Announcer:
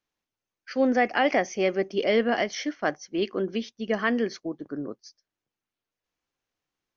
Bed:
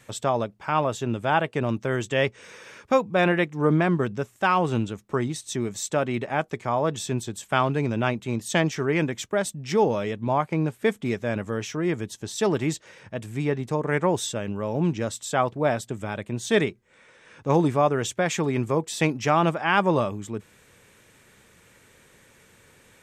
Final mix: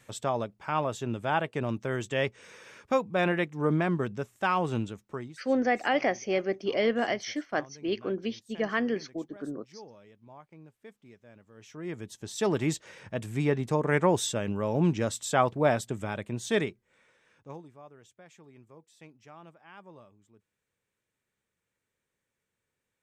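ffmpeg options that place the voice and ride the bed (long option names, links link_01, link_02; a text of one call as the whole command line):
ffmpeg -i stem1.wav -i stem2.wav -filter_complex "[0:a]adelay=4700,volume=-3.5dB[link_01];[1:a]volume=20.5dB,afade=type=out:start_time=4.82:duration=0.62:silence=0.0841395,afade=type=in:start_time=11.54:duration=1.35:silence=0.0501187,afade=type=out:start_time=15.74:duration=1.89:silence=0.0375837[link_02];[link_01][link_02]amix=inputs=2:normalize=0" out.wav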